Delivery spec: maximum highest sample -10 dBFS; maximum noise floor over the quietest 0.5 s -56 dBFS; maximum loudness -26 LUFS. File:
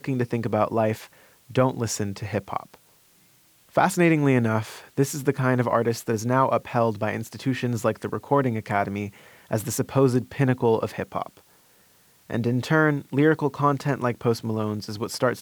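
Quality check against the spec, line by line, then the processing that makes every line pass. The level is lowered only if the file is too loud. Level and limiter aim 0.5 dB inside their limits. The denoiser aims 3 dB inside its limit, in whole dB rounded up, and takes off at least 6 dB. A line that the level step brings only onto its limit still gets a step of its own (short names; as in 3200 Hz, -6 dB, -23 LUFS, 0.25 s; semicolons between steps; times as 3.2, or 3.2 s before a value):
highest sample -7.0 dBFS: fail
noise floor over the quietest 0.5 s -59 dBFS: OK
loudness -24.5 LUFS: fail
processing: gain -2 dB; limiter -10.5 dBFS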